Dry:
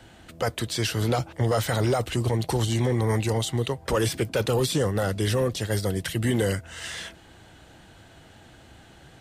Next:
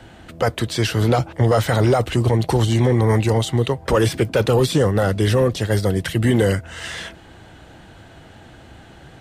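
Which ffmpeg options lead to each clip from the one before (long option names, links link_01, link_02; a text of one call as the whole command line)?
ffmpeg -i in.wav -af "highshelf=frequency=3500:gain=-7.5,volume=7.5dB" out.wav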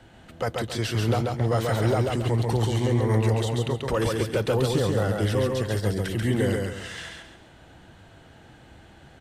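ffmpeg -i in.wav -af "aecho=1:1:137|274|411|548|685:0.708|0.248|0.0867|0.0304|0.0106,volume=-8.5dB" out.wav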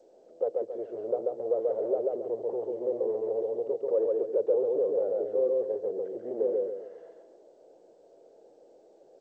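ffmpeg -i in.wav -af "asoftclip=type=tanh:threshold=-22dB,asuperpass=centerf=490:order=4:qfactor=2.5,volume=5dB" -ar 16000 -c:a g722 out.g722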